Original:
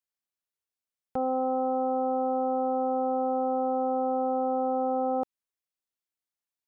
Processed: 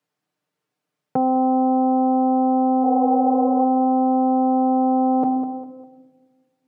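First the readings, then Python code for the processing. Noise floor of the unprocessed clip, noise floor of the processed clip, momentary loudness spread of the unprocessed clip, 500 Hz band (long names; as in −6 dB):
below −85 dBFS, −82 dBFS, 2 LU, +3.5 dB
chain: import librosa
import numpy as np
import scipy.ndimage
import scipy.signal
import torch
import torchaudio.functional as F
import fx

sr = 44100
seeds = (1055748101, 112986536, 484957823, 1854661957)

p1 = fx.low_shelf(x, sr, hz=400.0, db=-7.0)
p2 = fx.spec_repair(p1, sr, seeds[0], start_s=2.86, length_s=0.75, low_hz=370.0, high_hz=1100.0, source='both')
p3 = scipy.signal.sosfilt(scipy.signal.butter(4, 140.0, 'highpass', fs=sr, output='sos'), p2)
p4 = fx.tilt_eq(p3, sr, slope=-4.5)
p5 = p4 + 0.59 * np.pad(p4, (int(6.6 * sr / 1000.0), 0))[:len(p4)]
p6 = p5 + fx.echo_feedback(p5, sr, ms=201, feedback_pct=35, wet_db=-19, dry=0)
p7 = fx.room_shoebox(p6, sr, seeds[1], volume_m3=1200.0, walls='mixed', distance_m=0.3)
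p8 = fx.over_compress(p7, sr, threshold_db=-35.0, ratio=-1.0)
p9 = p7 + (p8 * 10.0 ** (1.0 / 20.0))
y = p9 * 10.0 ** (4.5 / 20.0)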